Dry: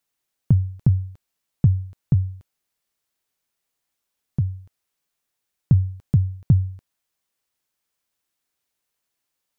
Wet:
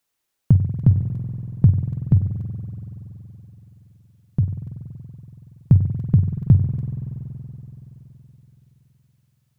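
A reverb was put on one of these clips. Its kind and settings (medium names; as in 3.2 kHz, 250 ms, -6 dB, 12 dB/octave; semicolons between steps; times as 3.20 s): spring tank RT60 3.9 s, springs 47 ms, chirp 35 ms, DRR 5.5 dB; trim +2.5 dB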